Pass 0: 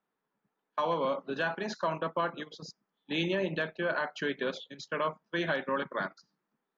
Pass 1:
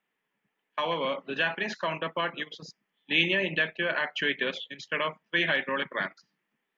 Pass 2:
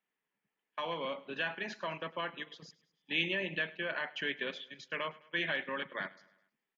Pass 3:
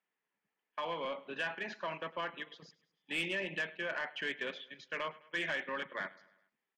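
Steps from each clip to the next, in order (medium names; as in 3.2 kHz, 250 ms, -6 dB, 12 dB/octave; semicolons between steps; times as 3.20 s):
high-order bell 2.4 kHz +12 dB 1.1 oct
feedback delay 104 ms, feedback 52%, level -21 dB; trim -8 dB
low-pass 2.6 kHz 6 dB/octave; bass shelf 320 Hz -7 dB; saturation -29 dBFS, distortion -18 dB; trim +2 dB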